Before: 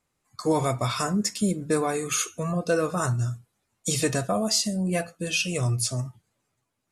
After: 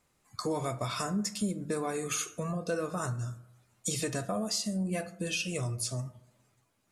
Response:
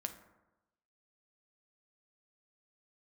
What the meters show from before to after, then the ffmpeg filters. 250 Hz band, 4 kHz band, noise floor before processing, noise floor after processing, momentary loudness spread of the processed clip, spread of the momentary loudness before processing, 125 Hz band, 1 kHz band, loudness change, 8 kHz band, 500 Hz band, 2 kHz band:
-6.5 dB, -7.5 dB, -78 dBFS, -73 dBFS, 6 LU, 8 LU, -8.0 dB, -7.5 dB, -7.5 dB, -7.0 dB, -8.0 dB, -7.5 dB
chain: -filter_complex "[0:a]acompressor=threshold=-41dB:ratio=2.5,asplit=2[a][b];[1:a]atrim=start_sample=2205[c];[b][c]afir=irnorm=-1:irlink=0,volume=-1dB[d];[a][d]amix=inputs=2:normalize=0"

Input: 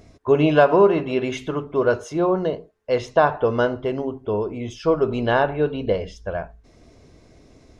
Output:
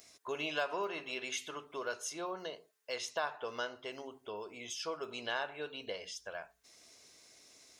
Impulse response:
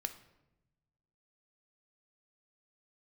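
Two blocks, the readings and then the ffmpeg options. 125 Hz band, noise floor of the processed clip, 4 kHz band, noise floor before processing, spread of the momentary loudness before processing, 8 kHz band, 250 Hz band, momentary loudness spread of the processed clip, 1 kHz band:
-32.0 dB, -72 dBFS, -5.0 dB, -52 dBFS, 13 LU, n/a, -25.5 dB, 21 LU, -17.5 dB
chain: -af "aderivative,acompressor=threshold=-52dB:ratio=1.5,volume=7dB"

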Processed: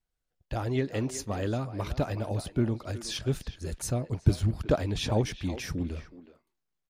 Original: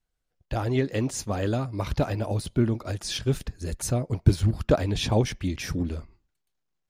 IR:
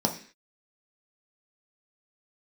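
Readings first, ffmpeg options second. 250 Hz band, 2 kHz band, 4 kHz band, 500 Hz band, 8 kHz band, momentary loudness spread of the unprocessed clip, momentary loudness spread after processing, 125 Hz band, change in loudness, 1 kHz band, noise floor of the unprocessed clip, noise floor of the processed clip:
-4.0 dB, -4.0 dB, -4.0 dB, -4.0 dB, -4.0 dB, 7 LU, 7 LU, -4.0 dB, -4.0 dB, -4.0 dB, -79 dBFS, -83 dBFS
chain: -filter_complex "[0:a]asplit=2[a][b];[b]adelay=370,highpass=300,lowpass=3.4k,asoftclip=type=hard:threshold=-14.5dB,volume=-12dB[c];[a][c]amix=inputs=2:normalize=0,volume=-4dB"

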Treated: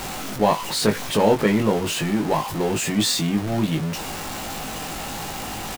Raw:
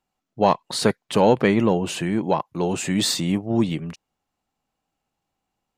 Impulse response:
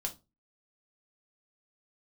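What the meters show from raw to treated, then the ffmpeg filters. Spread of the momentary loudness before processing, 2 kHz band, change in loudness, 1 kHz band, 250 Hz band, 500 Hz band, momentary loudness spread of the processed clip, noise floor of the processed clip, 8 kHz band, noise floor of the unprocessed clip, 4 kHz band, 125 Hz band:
7 LU, +2.5 dB, -1.0 dB, +0.5 dB, 0.0 dB, -0.5 dB, 11 LU, -31 dBFS, +4.0 dB, -82 dBFS, +2.5 dB, +1.0 dB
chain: -filter_complex "[0:a]aeval=exprs='val(0)+0.5*0.0794*sgn(val(0))':c=same,asplit=2[a][b];[b]adelay=19,volume=-4.5dB[c];[a][c]amix=inputs=2:normalize=0,volume=-3.5dB"

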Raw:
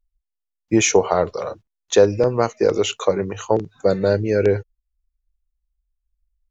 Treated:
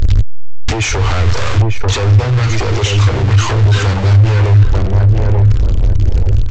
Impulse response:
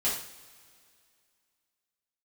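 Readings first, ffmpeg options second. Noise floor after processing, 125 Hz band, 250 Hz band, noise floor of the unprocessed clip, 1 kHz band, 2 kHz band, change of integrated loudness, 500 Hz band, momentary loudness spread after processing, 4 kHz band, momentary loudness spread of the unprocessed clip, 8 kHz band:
-16 dBFS, +21.0 dB, +1.0 dB, -82 dBFS, +4.5 dB, +8.5 dB, +6.5 dB, -4.5 dB, 6 LU, +8.5 dB, 9 LU, n/a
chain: -filter_complex "[0:a]aeval=exprs='val(0)+0.5*0.1*sgn(val(0))':c=same,lowpass=4.5k,equalizer=f=580:t=o:w=1:g=-14.5,asplit=2[a][b];[b]adelay=890,lowpass=f=810:p=1,volume=-3.5dB,asplit=2[c][d];[d]adelay=890,lowpass=f=810:p=1,volume=0.4,asplit=2[e][f];[f]adelay=890,lowpass=f=810:p=1,volume=0.4,asplit=2[g][h];[h]adelay=890,lowpass=f=810:p=1,volume=0.4,asplit=2[i][j];[j]adelay=890,lowpass=f=810:p=1,volume=0.4[k];[a][c][e][g][i][k]amix=inputs=6:normalize=0,acompressor=threshold=-29dB:ratio=8,aresample=16000,aeval=exprs='0.1*sin(PI/2*3.16*val(0)/0.1)':c=same,aresample=44100,lowshelf=f=130:t=q:w=3:g=7.5,asplit=2[l][m];[m]acontrast=79,volume=-1.5dB[n];[l][n]amix=inputs=2:normalize=0,volume=-3dB"

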